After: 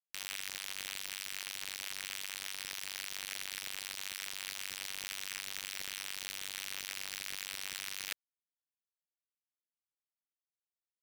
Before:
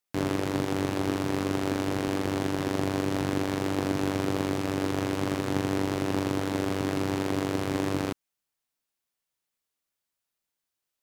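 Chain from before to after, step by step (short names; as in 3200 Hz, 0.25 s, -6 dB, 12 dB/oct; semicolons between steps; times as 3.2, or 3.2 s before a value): steep high-pass 1700 Hz 48 dB/oct; reverse; compressor 5:1, threshold -54 dBFS, peak gain reduction 17 dB; reverse; requantised 8-bit, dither none; gain +15 dB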